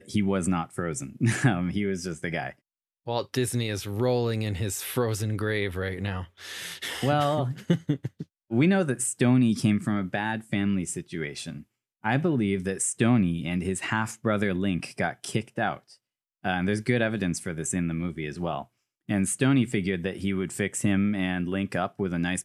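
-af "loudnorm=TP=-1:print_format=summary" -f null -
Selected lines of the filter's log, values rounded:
Input Integrated:    -27.4 LUFS
Input True Peak:      -7.5 dBTP
Input LRA:             3.5 LU
Input Threshold:     -37.6 LUFS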